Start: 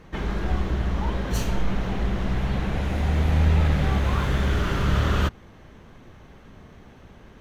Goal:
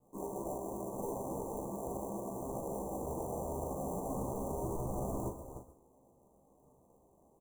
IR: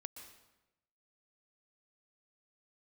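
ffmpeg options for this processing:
-filter_complex "[0:a]afwtdn=0.0316,highpass=500,aecho=1:1:307:0.106,asplit=2[a][b];[b]aeval=exprs='0.0237*(abs(mod(val(0)/0.0237+3,4)-2)-1)':c=same,volume=-3dB[c];[a][c]amix=inputs=2:normalize=0,flanger=delay=8.2:depth=5:regen=-53:speed=0.97:shape=triangular,acrusher=samples=33:mix=1:aa=0.000001,asplit=2[d][e];[1:a]atrim=start_sample=2205,atrim=end_sample=6174,adelay=15[f];[e][f]afir=irnorm=-1:irlink=0,volume=9.5dB[g];[d][g]amix=inputs=2:normalize=0,acompressor=threshold=-40dB:ratio=2,asuperstop=centerf=2900:order=20:qfactor=0.57,asplit=2[h][i];[i]adelay=40,volume=-7.5dB[j];[h][j]amix=inputs=2:normalize=0,volume=-1.5dB"

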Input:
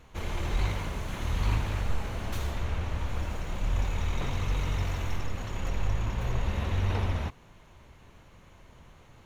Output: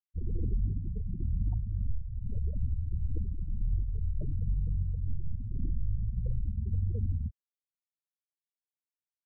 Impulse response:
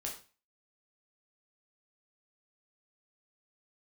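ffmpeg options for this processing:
-af "acrusher=samples=38:mix=1:aa=0.000001:lfo=1:lforange=38:lforate=0.39,alimiter=limit=-22.5dB:level=0:latency=1:release=482,afftfilt=real='re*gte(hypot(re,im),0.0631)':imag='im*gte(hypot(re,im),0.0631)':win_size=1024:overlap=0.75,volume=1.5dB"

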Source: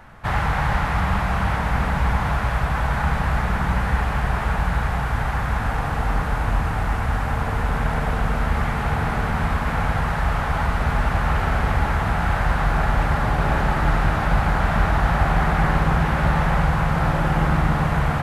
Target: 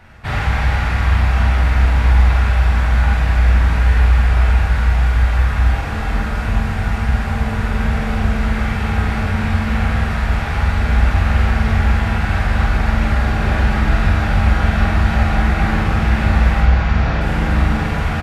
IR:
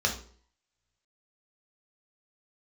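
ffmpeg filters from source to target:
-filter_complex "[0:a]asettb=1/sr,asplit=3[a][b][c];[a]atrim=end=16.614[d];[b]atrim=start=16.61:end=17.21,asetpts=PTS-STARTPTS,afade=t=in:d=0.004:c=qsin,afade=t=out:st=0.596:d=0.004:c=qsin,lowpass=f=6.2k:w=0.5412,lowpass=f=6.2k:w=1.3066[e];[c]atrim=start=17.206[f];[d][e]acrossfade=d=0.004:c1=hsin:c2=qsin[g];[g][f]acrossfade=d=0.004:c1=qsin:c2=hsin,asplit=2[h][i];[i]adelay=46,volume=-4dB[j];[h][j]amix=inputs=2:normalize=0,asplit=2[k][l];[1:a]atrim=start_sample=2205,highshelf=f=3.7k:g=10.5[m];[l][m]afir=irnorm=-1:irlink=0,volume=-13.5dB[n];[k][n]amix=inputs=2:normalize=0"

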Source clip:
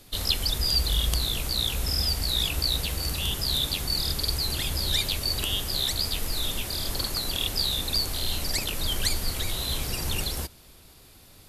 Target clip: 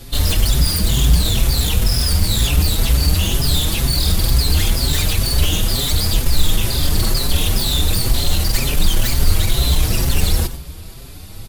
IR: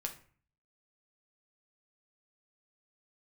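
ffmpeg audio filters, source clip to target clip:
-filter_complex "[0:a]aeval=exprs='0.562*sin(PI/2*10*val(0)/0.562)':c=same,lowshelf=f=200:g=10,asplit=2[a][b];[1:a]atrim=start_sample=2205,adelay=94[c];[b][c]afir=irnorm=-1:irlink=0,volume=-12dB[d];[a][d]amix=inputs=2:normalize=0,asplit=2[e][f];[f]adelay=5.6,afreqshift=2.1[g];[e][g]amix=inputs=2:normalize=1,volume=-9.5dB"

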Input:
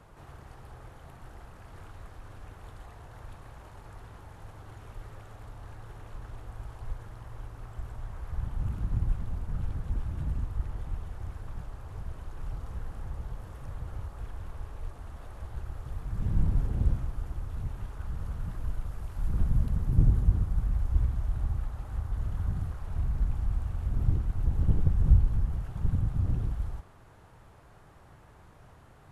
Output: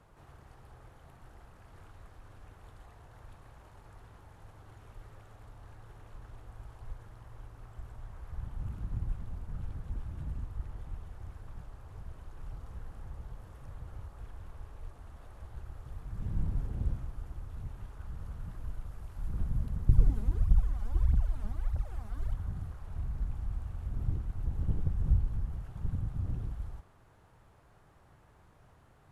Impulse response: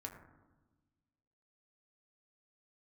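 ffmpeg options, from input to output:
-filter_complex "[0:a]asettb=1/sr,asplit=3[a][b][c];[a]atrim=end=19.894[d];[b]atrim=start=19.89:end=22.34,asetpts=PTS-STARTPTS,afade=t=in:d=0.004:c=qsin,afade=t=out:st=2.446:d=0.004:c=qsin,aphaser=in_gain=1:out_gain=1:delay=5:decay=0.8:speed=1.6:type=triangular[e];[c]atrim=start=22.336[f];[d][e]acrossfade=d=0.004:c1=hsin:c2=qsin[g];[g][f]acrossfade=d=0.004:c1=qsin:c2=hsin,volume=-6.5dB"

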